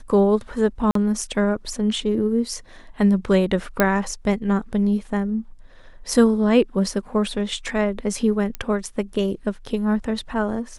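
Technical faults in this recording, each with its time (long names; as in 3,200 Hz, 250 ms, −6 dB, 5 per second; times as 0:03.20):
0:00.91–0:00.95: drop-out 43 ms
0:03.80: click −3 dBFS
0:08.55: click −13 dBFS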